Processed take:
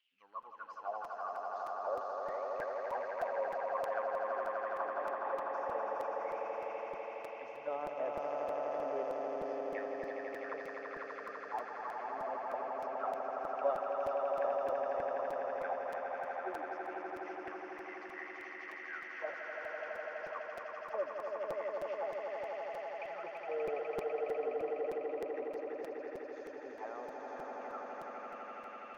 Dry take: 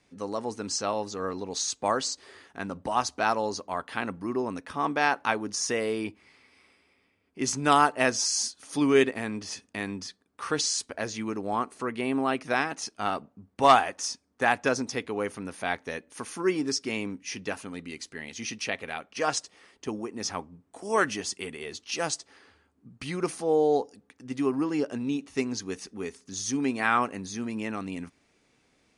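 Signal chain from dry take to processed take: treble shelf 2.2 kHz +4 dB; band-stop 3.9 kHz, Q 11; reverse; upward compressor, threshold -37 dBFS; reverse; word length cut 10-bit, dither triangular; auto-wah 560–3000 Hz, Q 11, down, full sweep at -22 dBFS; phaser 0.69 Hz, delay 3.4 ms, feedback 29%; distance through air 150 m; on a send: echo with a slow build-up 83 ms, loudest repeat 8, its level -4.5 dB; on the sum: crackling interface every 0.31 s, samples 256, repeat, from 0.42 s; trim -3 dB

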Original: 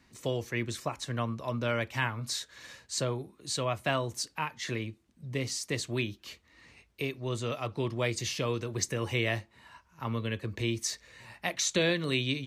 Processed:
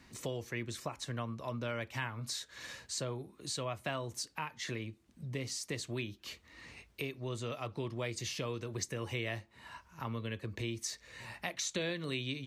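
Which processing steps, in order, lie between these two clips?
compression 2:1, threshold -48 dBFS, peak gain reduction 13.5 dB; trim +4 dB

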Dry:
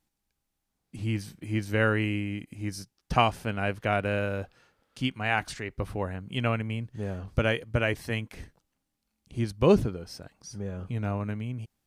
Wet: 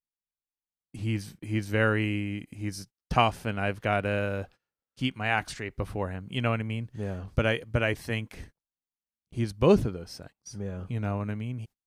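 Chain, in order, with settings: gate -47 dBFS, range -26 dB

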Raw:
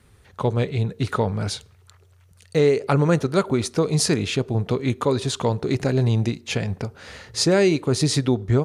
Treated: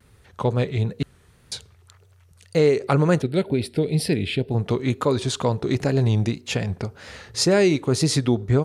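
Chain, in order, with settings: 1.03–1.52 s: room tone; 3.22–4.51 s: static phaser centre 2.8 kHz, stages 4; wow and flutter 73 cents

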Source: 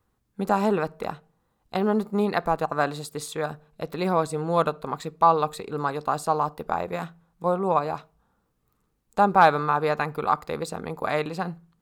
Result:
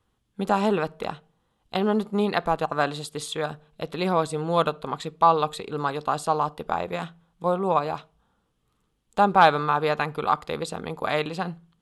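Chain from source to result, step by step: brick-wall FIR low-pass 12 kHz; peaking EQ 3.2 kHz +10 dB 0.48 oct

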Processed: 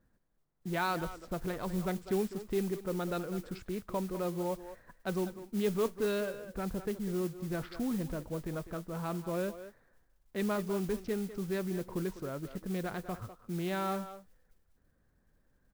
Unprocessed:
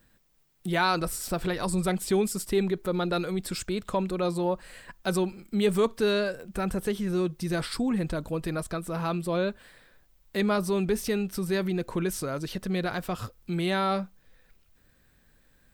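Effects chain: local Wiener filter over 15 samples; distance through air 180 m; speakerphone echo 200 ms, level -11 dB; modulation noise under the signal 18 dB; trim -6.5 dB

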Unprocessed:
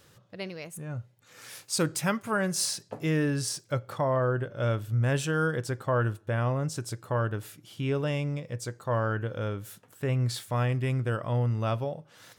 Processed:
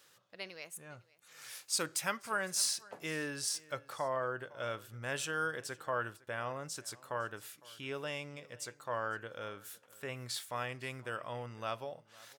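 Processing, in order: high-pass 1.1 kHz 6 dB/octave; delay 507 ms -22.5 dB; trim -2.5 dB

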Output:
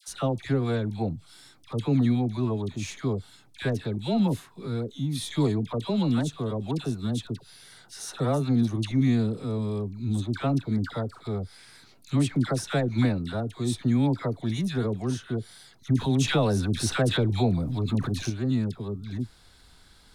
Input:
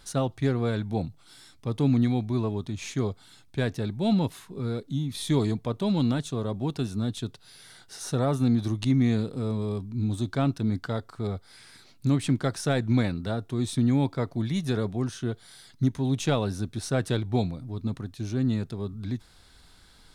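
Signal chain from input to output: phase dispersion lows, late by 82 ms, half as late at 1.1 kHz; 15.90–18.30 s: level flattener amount 50%

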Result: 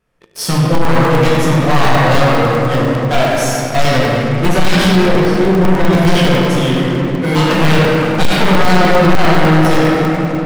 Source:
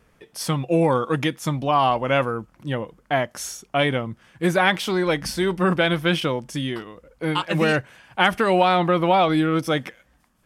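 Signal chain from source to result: one-sided wavefolder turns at -19.5 dBFS; 5.03–5.93 s: low-pass 1.2 kHz 6 dB/octave; simulated room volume 180 m³, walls hard, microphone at 1 m; waveshaping leveller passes 3; crackling interface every 0.10 s, samples 64, zero; trim -5.5 dB

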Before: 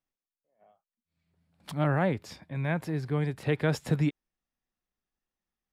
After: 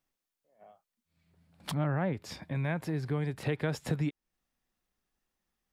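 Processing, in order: 1.74–2.14 s: tone controls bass +3 dB, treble -12 dB; compression 2.5:1, threshold -39 dBFS, peak gain reduction 12.5 dB; trim +6 dB

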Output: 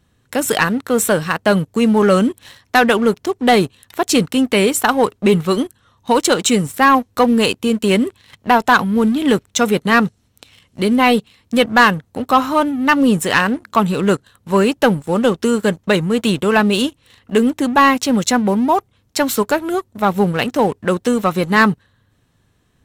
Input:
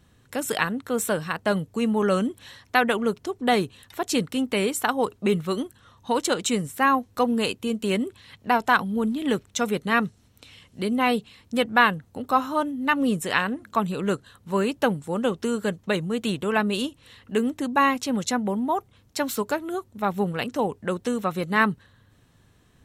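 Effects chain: waveshaping leveller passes 2; trim +2.5 dB

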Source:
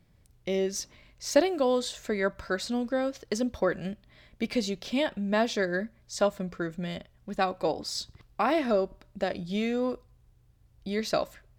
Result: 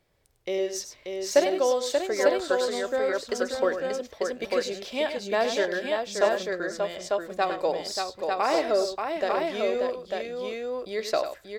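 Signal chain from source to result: resonant low shelf 300 Hz -10.5 dB, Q 1.5; multi-tap echo 101/584/897 ms -9.5/-5.5/-3.5 dB

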